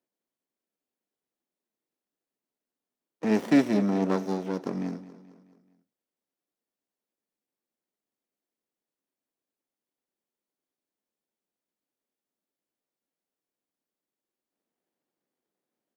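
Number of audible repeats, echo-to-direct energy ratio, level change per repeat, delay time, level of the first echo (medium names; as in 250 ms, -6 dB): 4, -15.0 dB, -6.0 dB, 215 ms, -16.0 dB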